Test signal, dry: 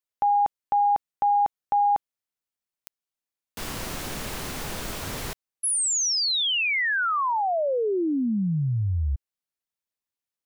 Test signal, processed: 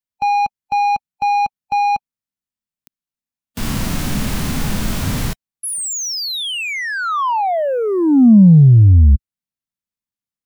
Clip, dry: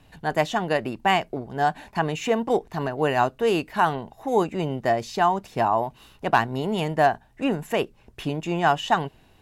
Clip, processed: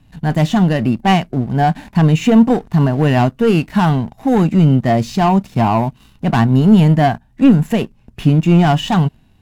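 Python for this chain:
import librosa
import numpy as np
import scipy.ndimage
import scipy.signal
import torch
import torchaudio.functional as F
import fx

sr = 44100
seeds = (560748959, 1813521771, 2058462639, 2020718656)

y = fx.leveller(x, sr, passes=2)
y = fx.low_shelf_res(y, sr, hz=300.0, db=8.0, q=1.5)
y = fx.hpss(y, sr, part='harmonic', gain_db=7)
y = y * librosa.db_to_amplitude(-3.5)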